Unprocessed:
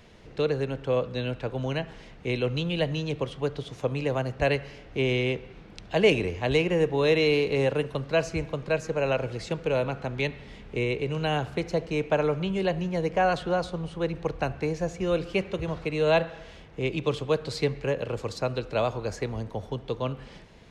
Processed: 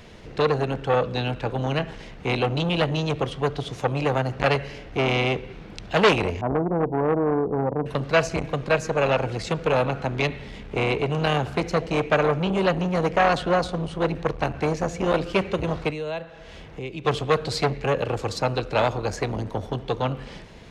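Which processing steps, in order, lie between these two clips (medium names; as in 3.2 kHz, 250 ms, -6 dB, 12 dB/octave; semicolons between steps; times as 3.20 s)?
6.41–7.86 s: rippled Chebyshev low-pass 1 kHz, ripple 6 dB; 15.90–17.05 s: compression 2.5:1, threshold -43 dBFS, peak gain reduction 17 dB; transformer saturation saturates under 1.5 kHz; trim +7.5 dB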